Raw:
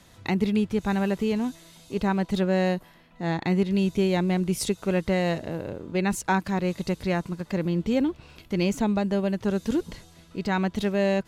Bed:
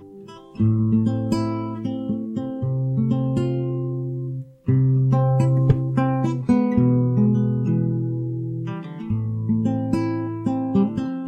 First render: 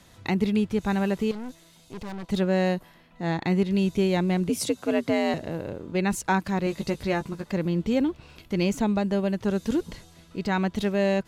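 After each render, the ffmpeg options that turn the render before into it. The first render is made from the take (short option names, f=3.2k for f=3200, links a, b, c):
-filter_complex "[0:a]asettb=1/sr,asplit=3[a][b][c];[a]atrim=end=1.314[d];[b]atrim=start=1.31:end=2.29,asetpts=PTS-STARTPTS,afade=t=in:d=0.004:c=qsin,afade=t=out:st=0.976:d=0.004:c=qsin,aeval=exprs='(tanh(50.1*val(0)+0.75)-tanh(0.75))/50.1':c=same[e];[c]atrim=start=2.286[f];[d][e]acrossfade=d=0.004:c1=hsin:c2=qsin[g];[g][f]acrossfade=d=0.004:c1=qsin:c2=hsin,asettb=1/sr,asplit=3[h][i][j];[h]atrim=end=4.494[k];[i]atrim=start=4.49:end=5.34,asetpts=PTS-STARTPTS,afade=t=in:d=0.004:c=qsin,afade=t=out:st=0.846:d=0.004:c=qsin,afreqshift=72[l];[j]atrim=start=5.336[m];[k][l]acrossfade=d=0.004:c1=hsin:c2=qsin[n];[n][m]acrossfade=d=0.004:c1=qsin:c2=hsin,asettb=1/sr,asplit=3[o][p][q];[o]atrim=end=6.654[r];[p]atrim=start=6.65:end=7.44,asetpts=PTS-STARTPTS,afade=t=in:d=0.004:c=qsin,afade=t=out:st=0.786:d=0.004:c=qsin,asplit=2[s][t];[t]adelay=14,volume=-7dB[u];[s][u]amix=inputs=2:normalize=0,atrim=end_sample=34839[v];[q]atrim=start=7.436[w];[r][v]acrossfade=d=0.004:c1=hsin:c2=qsin[x];[x][w]acrossfade=d=0.004:c1=qsin:c2=hsin"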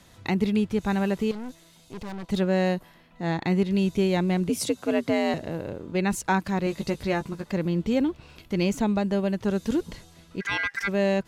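-filter_complex "[0:a]asplit=3[a][b][c];[a]afade=t=out:st=10.4:d=0.02[d];[b]aeval=exprs='val(0)*sin(2*PI*1800*n/s)':c=same,afade=t=in:st=10.4:d=0.02,afade=t=out:st=10.87:d=0.02[e];[c]afade=t=in:st=10.87:d=0.02[f];[d][e][f]amix=inputs=3:normalize=0"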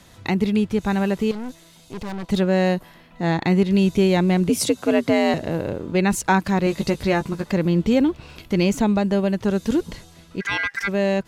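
-filter_complex "[0:a]dynaudnorm=f=400:g=13:m=3dB,asplit=2[a][b];[b]alimiter=limit=-16dB:level=0:latency=1:release=259,volume=-3dB[c];[a][c]amix=inputs=2:normalize=0"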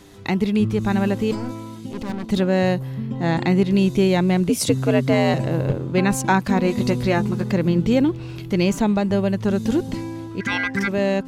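-filter_complex "[1:a]volume=-7dB[a];[0:a][a]amix=inputs=2:normalize=0"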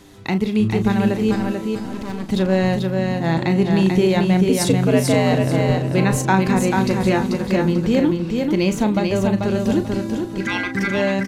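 -filter_complex "[0:a]asplit=2[a][b];[b]adelay=37,volume=-10dB[c];[a][c]amix=inputs=2:normalize=0,aecho=1:1:439|878|1317|1756:0.631|0.177|0.0495|0.0139"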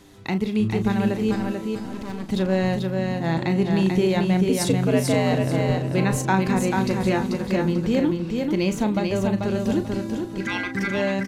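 -af "volume=-4dB"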